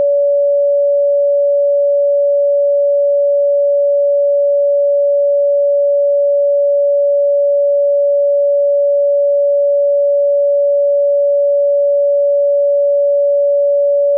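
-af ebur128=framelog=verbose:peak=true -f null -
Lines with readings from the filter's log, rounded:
Integrated loudness:
  I:         -12.3 LUFS
  Threshold: -22.3 LUFS
Loudness range:
  LRA:         0.0 LU
  Threshold: -32.3 LUFS
  LRA low:   -12.3 LUFS
  LRA high:  -12.3 LUFS
True peak:
  Peak:       -8.7 dBFS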